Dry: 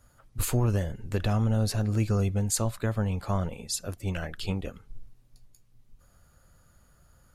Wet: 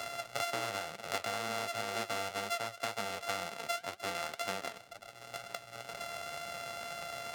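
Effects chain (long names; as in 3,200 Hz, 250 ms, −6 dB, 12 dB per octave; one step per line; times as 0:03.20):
samples sorted by size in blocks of 64 samples
in parallel at +2.5 dB: downward compressor, threshold −39 dBFS, peak gain reduction 17.5 dB
on the sum: meter weighting curve A
flanger 2 Hz, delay 4.4 ms, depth 5.2 ms, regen +69%
low-shelf EQ 170 Hz −5.5 dB
multiband upward and downward compressor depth 100%
level −2.5 dB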